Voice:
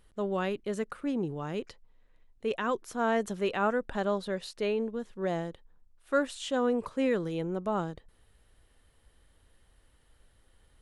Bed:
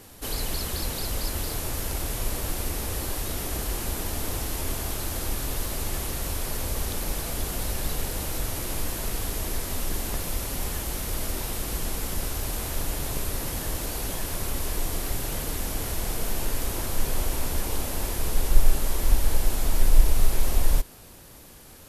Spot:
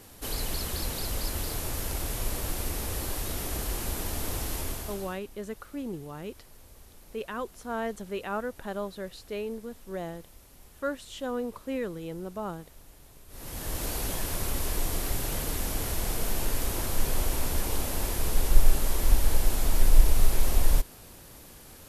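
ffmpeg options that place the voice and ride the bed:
-filter_complex "[0:a]adelay=4700,volume=-4.5dB[a];[1:a]volume=20dB,afade=t=out:st=4.55:d=0.65:silence=0.0891251,afade=t=in:st=13.28:d=0.59:silence=0.0749894[b];[a][b]amix=inputs=2:normalize=0"

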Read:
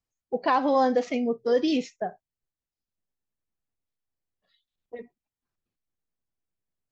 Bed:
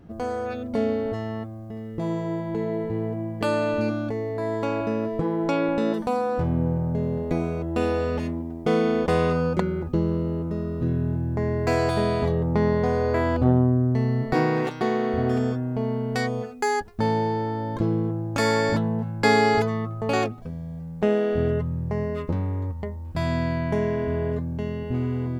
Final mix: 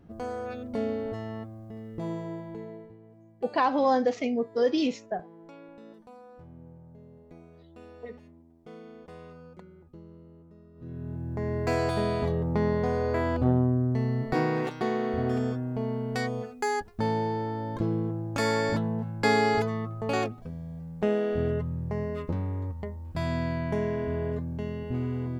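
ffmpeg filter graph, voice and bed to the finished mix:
-filter_complex "[0:a]adelay=3100,volume=-1.5dB[a];[1:a]volume=14.5dB,afade=t=out:st=2.06:d=0.91:silence=0.112202,afade=t=in:st=10.74:d=0.83:silence=0.0944061[b];[a][b]amix=inputs=2:normalize=0"

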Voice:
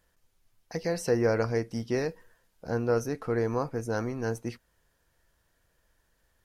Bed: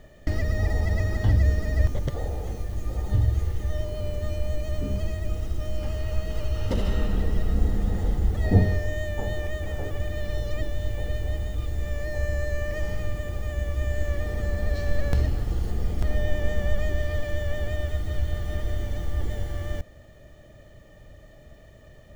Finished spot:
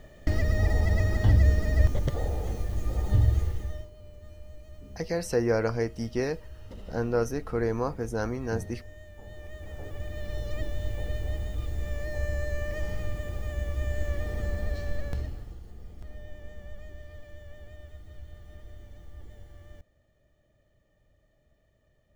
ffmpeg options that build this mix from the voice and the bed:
-filter_complex "[0:a]adelay=4250,volume=0dB[a];[1:a]volume=15dB,afade=t=out:st=3.33:d=0.57:silence=0.11885,afade=t=in:st=9.2:d=1.49:silence=0.177828,afade=t=out:st=14.46:d=1.14:silence=0.177828[b];[a][b]amix=inputs=2:normalize=0"

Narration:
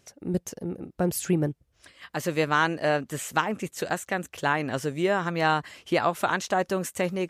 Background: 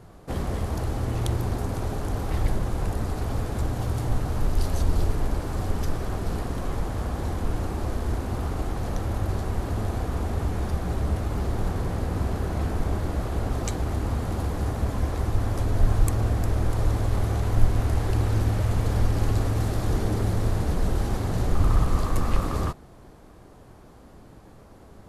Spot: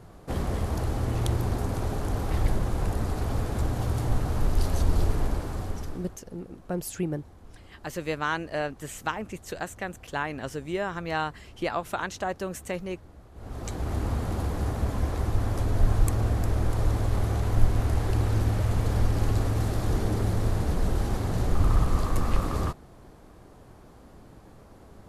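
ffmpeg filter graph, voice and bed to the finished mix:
-filter_complex "[0:a]adelay=5700,volume=-5.5dB[a];[1:a]volume=20.5dB,afade=t=out:st=5.2:d=0.98:silence=0.0794328,afade=t=in:st=13.34:d=0.64:silence=0.0891251[b];[a][b]amix=inputs=2:normalize=0"

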